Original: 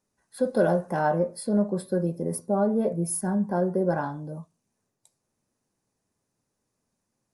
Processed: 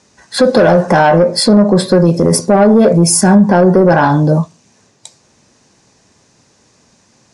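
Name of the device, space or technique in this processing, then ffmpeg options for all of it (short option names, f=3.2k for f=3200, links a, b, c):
mastering chain: -filter_complex "[0:a]lowpass=f=6.9k:w=0.5412,lowpass=f=6.9k:w=1.3066,asettb=1/sr,asplit=3[a][b][c];[a]atrim=end=2.054[d];[b]atrim=start=2.05:end=3.35,asetpts=PTS-STARTPTS,afade=t=in:d=0.004:c=qsin,afade=t=out:st=1.296:d=0.004:c=qsin,bass=f=250:g=-1,treble=f=4k:g=4[e];[c]atrim=start=3.346[f];[d][e]acrossfade=d=0.004:c1=hsin:c2=qsin[g];[g][f]acrossfade=d=0.004:c1=qsin:c2=hsin,highpass=41,equalizer=f=1.3k:t=o:w=0.25:g=-2.5,acompressor=threshold=-28dB:ratio=2,asoftclip=type=tanh:threshold=-22dB,tiltshelf=f=1.4k:g=-3.5,alimiter=level_in=30.5dB:limit=-1dB:release=50:level=0:latency=1,volume=-1dB"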